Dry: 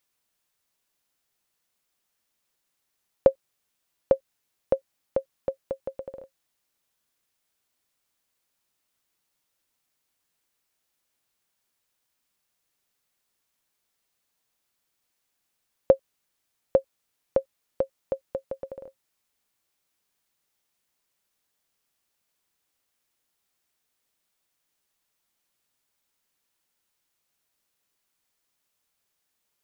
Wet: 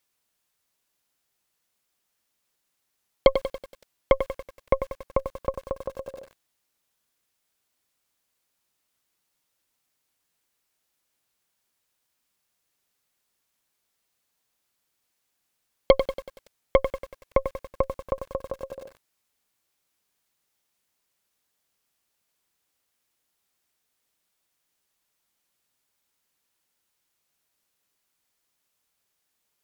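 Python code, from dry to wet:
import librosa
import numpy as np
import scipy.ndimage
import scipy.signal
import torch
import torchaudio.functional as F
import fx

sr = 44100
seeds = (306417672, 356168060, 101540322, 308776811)

y = fx.cheby_harmonics(x, sr, harmonics=(8,), levels_db=(-16,), full_scale_db=-4.0)
y = fx.echo_crushed(y, sr, ms=94, feedback_pct=55, bits=7, wet_db=-9.0)
y = F.gain(torch.from_numpy(y), 1.0).numpy()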